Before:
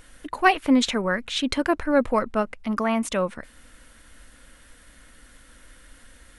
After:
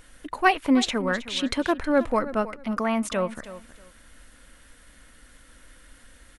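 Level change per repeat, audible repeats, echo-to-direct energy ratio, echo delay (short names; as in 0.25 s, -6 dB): -13.5 dB, 2, -15.0 dB, 0.318 s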